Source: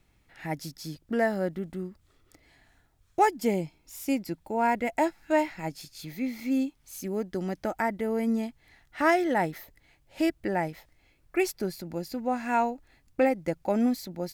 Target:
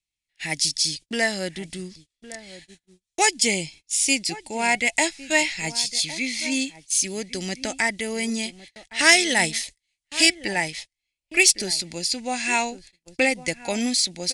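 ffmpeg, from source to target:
ffmpeg -i in.wav -filter_complex "[0:a]asplit=2[link_01][link_02];[link_02]adelay=1108,volume=-15dB,highshelf=frequency=4000:gain=-24.9[link_03];[link_01][link_03]amix=inputs=2:normalize=0,flanger=delay=0.1:depth=1.3:regen=88:speed=0.53:shape=triangular,asettb=1/sr,asplit=3[link_04][link_05][link_06];[link_04]atrim=end=8.994[link_07];[link_05]atrim=start=8.99:end=10.34,asetpts=PTS-STARTPTS,afade=type=in:duration=0.004:curve=qsin,afade=type=out:start_time=1.346:duration=0.004:curve=qsin,highshelf=frequency=3500:gain=6[link_08];[link_06]atrim=start=10.336[link_09];[link_07][link_08]acrossfade=duration=0.004:curve1=hsin:curve2=qsin[link_10];[link_10][link_09]acrossfade=duration=0.004:curve1=qsin:curve2=hsin,agate=range=-33dB:threshold=-52dB:ratio=16:detection=peak,aresample=22050,aresample=44100,acrossover=split=790[link_11][link_12];[link_12]aexciter=amount=5.4:drive=9.3:freq=2000[link_13];[link_11][link_13]amix=inputs=2:normalize=0,volume=4dB" out.wav

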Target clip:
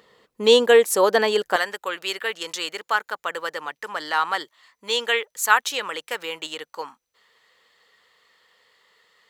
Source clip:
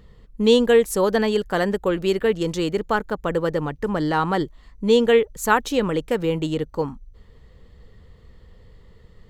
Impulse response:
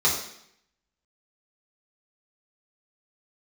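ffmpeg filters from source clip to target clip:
-af "asetnsamples=nb_out_samples=441:pad=0,asendcmd='1.56 highpass f 1200',highpass=500,volume=5dB"

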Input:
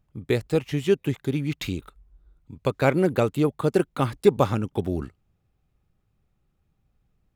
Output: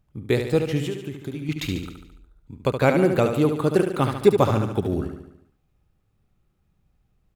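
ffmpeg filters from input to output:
ffmpeg -i in.wav -filter_complex "[0:a]asettb=1/sr,asplit=3[link_01][link_02][link_03];[link_01]atrim=end=0.804[link_04];[link_02]atrim=start=0.8:end=1.49,asetpts=PTS-STARTPTS,afade=type=in:duration=0.004:curve=qsin,afade=type=out:start_time=0.686:duration=0.004:curve=qsin,acompressor=threshold=-31dB:ratio=5[link_05];[link_03]atrim=start=1.486[link_06];[link_04][link_05]acrossfade=duration=0.004:curve1=hsin:curve2=qsin[link_07];[link_07][link_06]acrossfade=duration=0.004:curve1=qsin:curve2=hsin,aecho=1:1:72|144|216|288|360|432|504:0.447|0.246|0.135|0.0743|0.0409|0.0225|0.0124,volume=1.5dB" out.wav

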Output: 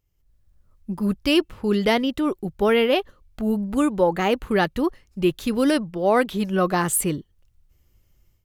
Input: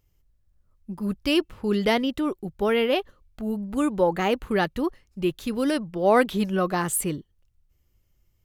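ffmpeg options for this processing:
ffmpeg -i in.wav -af "dynaudnorm=framelen=170:gausssize=3:maxgain=12.5dB,volume=-6.5dB" out.wav

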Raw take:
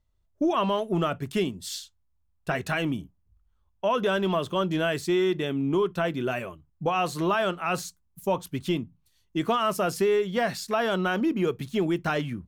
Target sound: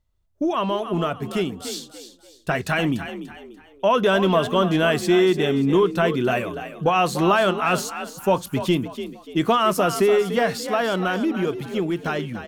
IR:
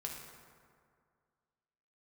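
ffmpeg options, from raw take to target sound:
-filter_complex "[0:a]dynaudnorm=framelen=280:gausssize=17:maxgain=5dB,asplit=5[link_01][link_02][link_03][link_04][link_05];[link_02]adelay=292,afreqshift=46,volume=-11dB[link_06];[link_03]adelay=584,afreqshift=92,volume=-20.1dB[link_07];[link_04]adelay=876,afreqshift=138,volume=-29.2dB[link_08];[link_05]adelay=1168,afreqshift=184,volume=-38.4dB[link_09];[link_01][link_06][link_07][link_08][link_09]amix=inputs=5:normalize=0,volume=1.5dB"

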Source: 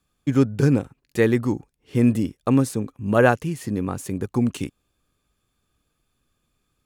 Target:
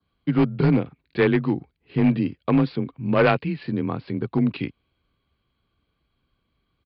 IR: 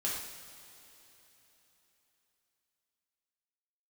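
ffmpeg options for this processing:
-af "afreqshift=27,aresample=11025,volume=12dB,asoftclip=hard,volume=-12dB,aresample=44100,asetrate=40440,aresample=44100,atempo=1.09051,adynamicequalizer=threshold=0.00708:dfrequency=2500:dqfactor=2:tfrequency=2500:tqfactor=2:attack=5:release=100:ratio=0.375:range=3:mode=boostabove:tftype=bell"

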